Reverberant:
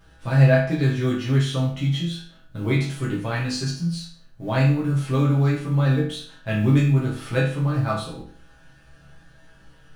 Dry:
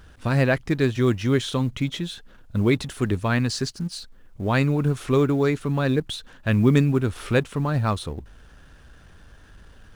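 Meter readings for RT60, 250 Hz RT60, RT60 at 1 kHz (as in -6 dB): 0.50 s, 0.50 s, 0.50 s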